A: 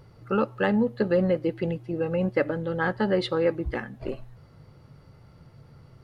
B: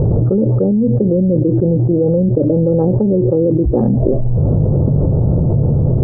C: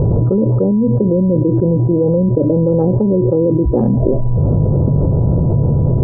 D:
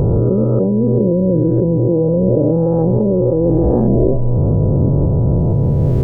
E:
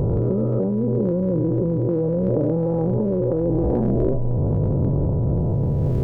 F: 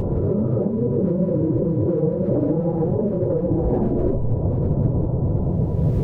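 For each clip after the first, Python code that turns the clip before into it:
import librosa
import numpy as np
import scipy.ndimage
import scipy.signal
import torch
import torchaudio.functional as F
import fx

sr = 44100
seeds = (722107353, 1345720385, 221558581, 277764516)

y1 = fx.env_lowpass_down(x, sr, base_hz=340.0, full_db=-20.5)
y1 = scipy.signal.sosfilt(scipy.signal.cheby2(4, 60, 2100.0, 'lowpass', fs=sr, output='sos'), y1)
y1 = fx.env_flatten(y1, sr, amount_pct=100)
y1 = F.gain(torch.from_numpy(y1), 8.5).numpy()
y2 = y1 + 10.0 ** (-40.0 / 20.0) * np.sin(2.0 * np.pi * 980.0 * np.arange(len(y1)) / sr)
y3 = fx.spec_swells(y2, sr, rise_s=1.75)
y3 = F.gain(torch.from_numpy(y3), -3.0).numpy()
y4 = fx.transient(y3, sr, attack_db=1, sustain_db=8)
y4 = F.gain(torch.from_numpy(y4), -7.5).numpy()
y5 = fx.phase_scramble(y4, sr, seeds[0], window_ms=50)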